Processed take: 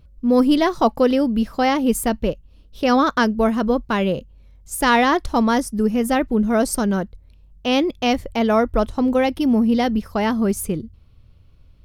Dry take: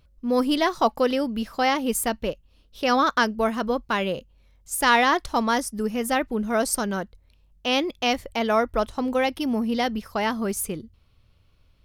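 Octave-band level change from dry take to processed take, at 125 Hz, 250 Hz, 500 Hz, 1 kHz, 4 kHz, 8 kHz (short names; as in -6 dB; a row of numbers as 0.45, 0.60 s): +9.0, +8.0, +4.5, +2.5, 0.0, 0.0 dB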